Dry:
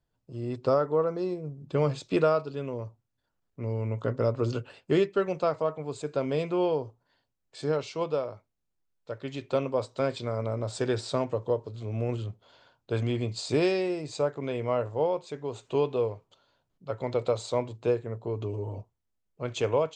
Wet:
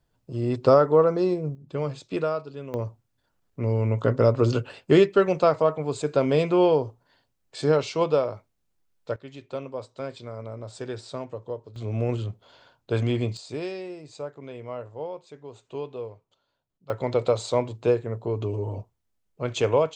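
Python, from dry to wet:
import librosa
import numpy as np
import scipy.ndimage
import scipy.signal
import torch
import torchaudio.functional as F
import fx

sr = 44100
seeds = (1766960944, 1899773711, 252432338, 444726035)

y = fx.gain(x, sr, db=fx.steps((0.0, 7.5), (1.55, -3.0), (2.74, 7.0), (9.16, -6.0), (11.76, 4.0), (13.37, -7.5), (16.9, 4.5)))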